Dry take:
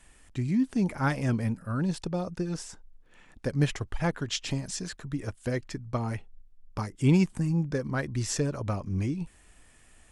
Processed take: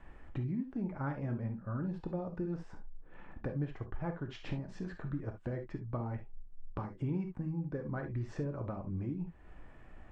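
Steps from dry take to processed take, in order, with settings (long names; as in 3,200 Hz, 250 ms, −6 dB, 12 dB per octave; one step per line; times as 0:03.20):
low-pass filter 1,300 Hz 12 dB per octave
downward compressor 3 to 1, threshold −45 dBFS, peak gain reduction 20 dB
reverb whose tail is shaped and stops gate 90 ms flat, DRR 5 dB
level +5 dB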